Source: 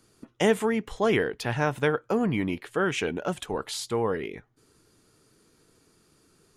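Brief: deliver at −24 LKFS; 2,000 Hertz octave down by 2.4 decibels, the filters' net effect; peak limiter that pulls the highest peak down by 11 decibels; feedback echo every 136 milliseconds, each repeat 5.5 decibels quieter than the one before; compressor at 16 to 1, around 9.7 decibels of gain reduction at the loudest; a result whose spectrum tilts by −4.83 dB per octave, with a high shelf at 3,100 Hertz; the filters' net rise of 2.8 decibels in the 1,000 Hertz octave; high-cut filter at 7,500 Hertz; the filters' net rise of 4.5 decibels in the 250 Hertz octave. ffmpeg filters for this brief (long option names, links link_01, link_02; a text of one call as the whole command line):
ffmpeg -i in.wav -af "lowpass=7500,equalizer=frequency=250:width_type=o:gain=5.5,equalizer=frequency=1000:width_type=o:gain=4.5,equalizer=frequency=2000:width_type=o:gain=-7,highshelf=frequency=3100:gain=6,acompressor=threshold=-23dB:ratio=16,alimiter=limit=-22dB:level=0:latency=1,aecho=1:1:136|272|408|544|680|816|952:0.531|0.281|0.149|0.079|0.0419|0.0222|0.0118,volume=7dB" out.wav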